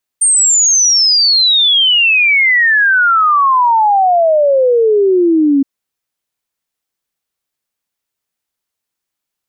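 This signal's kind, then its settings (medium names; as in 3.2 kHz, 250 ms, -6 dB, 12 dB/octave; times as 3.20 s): log sweep 8.9 kHz -> 270 Hz 5.42 s -7 dBFS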